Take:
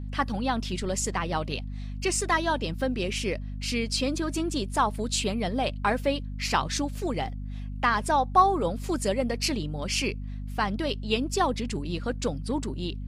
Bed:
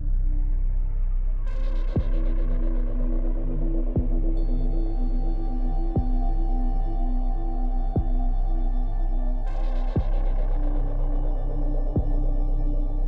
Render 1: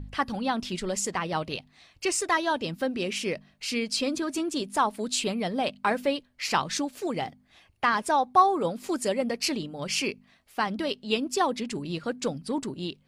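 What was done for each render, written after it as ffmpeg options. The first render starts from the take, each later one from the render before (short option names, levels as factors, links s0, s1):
-af "bandreject=f=50:t=h:w=4,bandreject=f=100:t=h:w=4,bandreject=f=150:t=h:w=4,bandreject=f=200:t=h:w=4,bandreject=f=250:t=h:w=4"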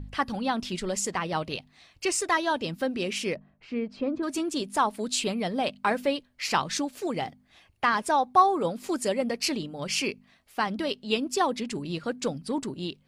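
-filter_complex "[0:a]asplit=3[s0][s1][s2];[s0]afade=t=out:st=3.34:d=0.02[s3];[s1]lowpass=1200,afade=t=in:st=3.34:d=0.02,afade=t=out:st=4.22:d=0.02[s4];[s2]afade=t=in:st=4.22:d=0.02[s5];[s3][s4][s5]amix=inputs=3:normalize=0"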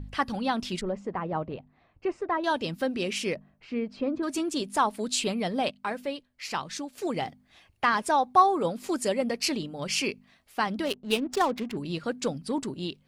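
-filter_complex "[0:a]asettb=1/sr,asplit=3[s0][s1][s2];[s0]atrim=end=0.814[s3];[s1]atrim=start=0.81:end=2.44,asetpts=PTS-STARTPTS,afade=t=in:d=0.004:c=qsin,afade=t=out:st=1.626:d=0.004:c=qsin,lowpass=1100[s4];[s2]atrim=start=2.436[s5];[s3][s4]acrossfade=d=0.004:c1=hsin:c2=qsin[s6];[s6][s5]acrossfade=d=0.004:c1=qsin:c2=hsin,asettb=1/sr,asplit=3[s7][s8][s9];[s7]atrim=end=10.854[s10];[s8]atrim=start=10.85:end=11.77,asetpts=PTS-STARTPTS,afade=t=in:d=0.004:c=qsin,afade=t=out:st=0.916:d=0.004:c=qsin,adynamicsmooth=sensitivity=8:basefreq=500[s11];[s9]atrim=start=11.766[s12];[s10][s11]acrossfade=d=0.004:c1=hsin:c2=qsin[s13];[s13][s12]acrossfade=d=0.004:c1=qsin:c2=hsin,asplit=3[s14][s15][s16];[s14]atrim=end=5.712[s17];[s15]atrim=start=5.708:end=6.982,asetpts=PTS-STARTPTS,volume=0.473[s18];[s16]atrim=start=6.978[s19];[s17][s18]acrossfade=d=0.004:c1=hsin:c2=hsin[s20];[s20][s19]acrossfade=d=0.004:c1=hsin:c2=hsin"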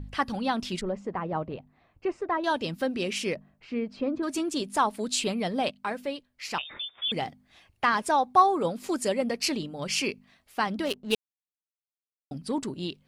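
-filter_complex "[0:a]asettb=1/sr,asplit=3[s0][s1][s2];[s0]atrim=end=6.584[s3];[s1]atrim=start=6.58:end=7.12,asetpts=PTS-STARTPTS,afade=t=in:d=0.004:c=qsin,afade=t=out:st=0.536:d=0.004:c=qsin,lowpass=f=3200:t=q:w=0.5098,lowpass=f=3200:t=q:w=0.6013,lowpass=f=3200:t=q:w=0.9,lowpass=f=3200:t=q:w=2.563,afreqshift=-3800[s4];[s2]atrim=start=7.116[s5];[s3][s4]acrossfade=d=0.004:c1=hsin:c2=qsin[s6];[s6][s5]acrossfade=d=0.004:c1=qsin:c2=hsin,asplit=3[s7][s8][s9];[s7]atrim=end=11.15,asetpts=PTS-STARTPTS,afade=t=out:st=11.146:d=0.004:c=hsin[s10];[s8]atrim=start=11.15:end=12.31,asetpts=PTS-STARTPTS,volume=0[s11];[s9]atrim=start=12.31,asetpts=PTS-STARTPTS,afade=t=in:d=0.004:c=hsin[s12];[s10][s11][s12]concat=n=3:v=0:a=1"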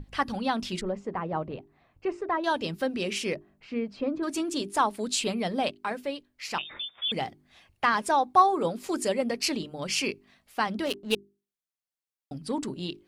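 -af "bandreject=f=50:t=h:w=6,bandreject=f=100:t=h:w=6,bandreject=f=150:t=h:w=6,bandreject=f=200:t=h:w=6,bandreject=f=250:t=h:w=6,bandreject=f=300:t=h:w=6,bandreject=f=350:t=h:w=6,bandreject=f=400:t=h:w=6"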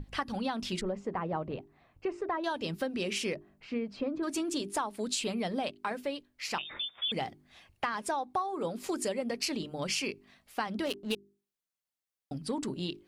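-af "acompressor=threshold=0.0355:ratio=10"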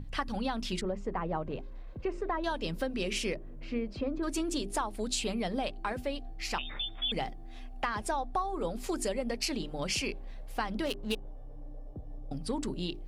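-filter_complex "[1:a]volume=0.1[s0];[0:a][s0]amix=inputs=2:normalize=0"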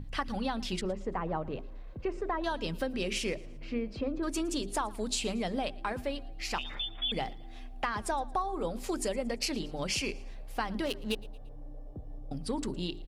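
-af "aecho=1:1:114|228|342:0.0794|0.0365|0.0168"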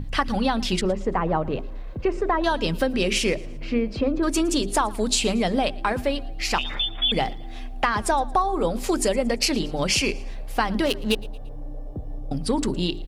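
-af "volume=3.35"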